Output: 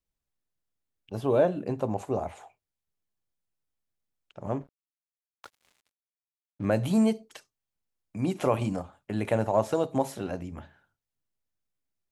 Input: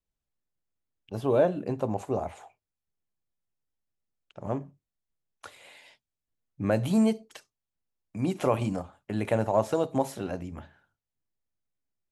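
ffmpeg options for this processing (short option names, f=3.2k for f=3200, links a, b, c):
-filter_complex "[0:a]asettb=1/sr,asplit=3[a][b][c];[a]atrim=end=4.614[d];[b]atrim=start=4.61:end=6.66,asetpts=PTS-STARTPTS,afade=t=in:d=0.004:c=qsin,afade=t=out:st=2.046:d=0.004:c=qsin,aeval=exprs='sgn(val(0))*max(abs(val(0))-0.00473,0)':c=same[e];[c]atrim=start=6.656[f];[d][e]acrossfade=d=0.004:c1=hsin:c2=qsin[g];[g][f]acrossfade=d=0.004:c1=qsin:c2=hsin"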